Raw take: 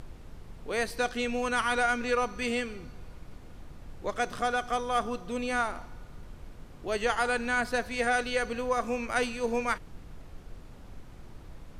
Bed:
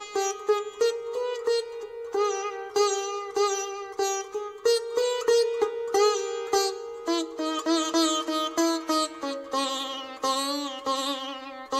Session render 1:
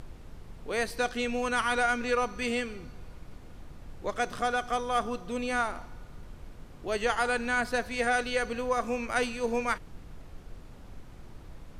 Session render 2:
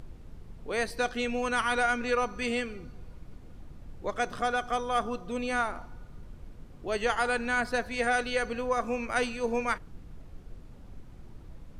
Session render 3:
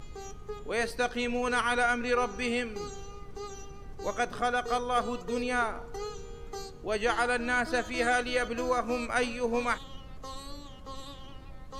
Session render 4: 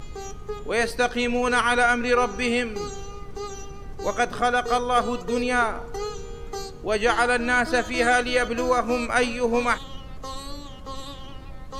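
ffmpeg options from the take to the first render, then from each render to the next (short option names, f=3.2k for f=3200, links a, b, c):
-af anull
-af "afftdn=nr=6:nf=-49"
-filter_complex "[1:a]volume=-17dB[a];[0:a][a]amix=inputs=2:normalize=0"
-af "volume=7dB"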